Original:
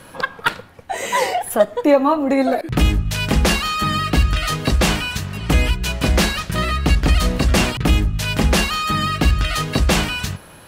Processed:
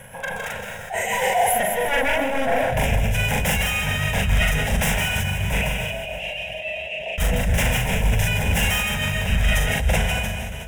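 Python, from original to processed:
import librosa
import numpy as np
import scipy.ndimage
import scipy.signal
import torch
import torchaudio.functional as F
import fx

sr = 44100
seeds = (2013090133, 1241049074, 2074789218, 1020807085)

y = fx.fade_out_tail(x, sr, length_s=1.47)
y = 10.0 ** (-15.0 / 20.0) * (np.abs((y / 10.0 ** (-15.0 / 20.0) + 3.0) % 4.0 - 2.0) - 1.0)
y = fx.double_bandpass(y, sr, hz=1300.0, octaves=2.1, at=(5.57, 7.18))
y = y + 10.0 ** (-7.5 / 20.0) * np.pad(y, (int(161 * sr / 1000.0), 0))[:len(y)]
y = fx.rev_plate(y, sr, seeds[0], rt60_s=2.5, hf_ratio=0.9, predelay_ms=115, drr_db=8.0)
y = y * (1.0 - 0.83 / 2.0 + 0.83 / 2.0 * np.cos(2.0 * np.pi * 7.2 * (np.arange(len(y)) / sr)))
y = 10.0 ** (-17.0 / 20.0) * np.tanh(y / 10.0 ** (-17.0 / 20.0))
y = fx.fixed_phaser(y, sr, hz=1200.0, stages=6)
y = fx.doubler(y, sr, ms=41.0, db=-2)
y = fx.sustainer(y, sr, db_per_s=22.0)
y = F.gain(torch.from_numpy(y), 4.0).numpy()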